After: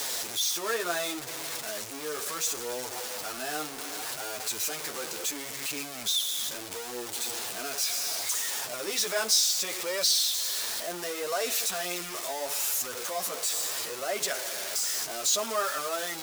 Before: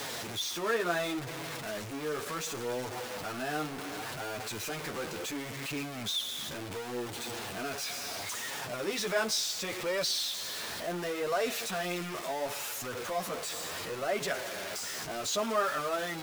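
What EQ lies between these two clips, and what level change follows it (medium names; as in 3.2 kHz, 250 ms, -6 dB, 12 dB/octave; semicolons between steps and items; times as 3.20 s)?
tone controls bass -11 dB, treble +11 dB; 0.0 dB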